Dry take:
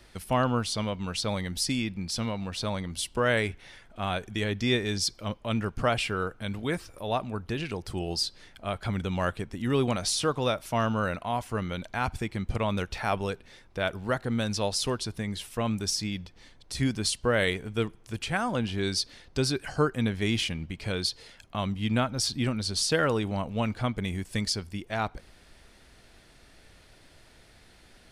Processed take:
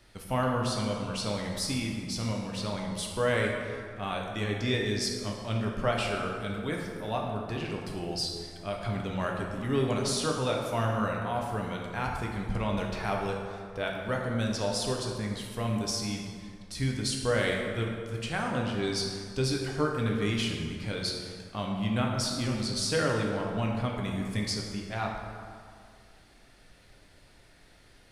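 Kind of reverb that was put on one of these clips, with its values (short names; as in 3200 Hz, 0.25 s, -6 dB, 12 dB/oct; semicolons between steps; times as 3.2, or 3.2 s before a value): plate-style reverb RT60 2.1 s, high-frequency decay 0.55×, DRR -0.5 dB; gain -5 dB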